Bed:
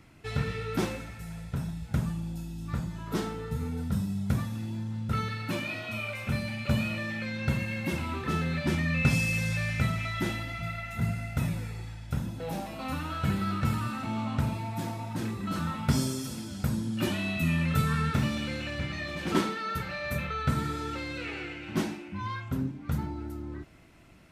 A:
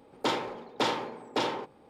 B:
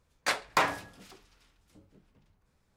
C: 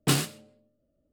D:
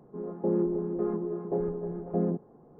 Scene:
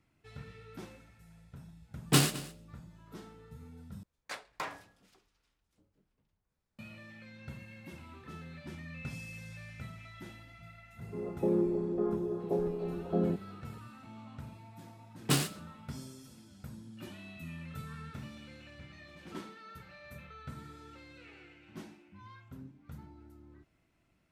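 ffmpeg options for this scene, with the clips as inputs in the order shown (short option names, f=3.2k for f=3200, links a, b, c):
-filter_complex "[3:a]asplit=2[a][b];[0:a]volume=-17.5dB[c];[a]aecho=1:1:213:0.126[d];[c]asplit=2[e][f];[e]atrim=end=4.034[g];[2:a]atrim=end=2.76,asetpts=PTS-STARTPTS,volume=-13.5dB[h];[f]atrim=start=6.786[i];[d]atrim=end=1.12,asetpts=PTS-STARTPTS,volume=-0.5dB,afade=t=in:d=0.1,afade=t=out:st=1.02:d=0.1,adelay=2050[j];[4:a]atrim=end=2.79,asetpts=PTS-STARTPTS,volume=-2dB,afade=t=in:d=0.004:c=hsin,afade=t=out:st=2.786:d=0.004:c=hsin,adelay=10990[k];[b]atrim=end=1.12,asetpts=PTS-STARTPTS,volume=-4.5dB,afade=t=in:d=0.004:c=hsin,afade=t=out:st=1.116:d=0.004:c=hsin,adelay=15220[l];[g][h]acrossfade=d=0.004:c1=hsin:c2=hsin[m];[m][i]acrossfade=d=0.004:c1=hsin:c2=hsin[n];[n][j][k][l]amix=inputs=4:normalize=0"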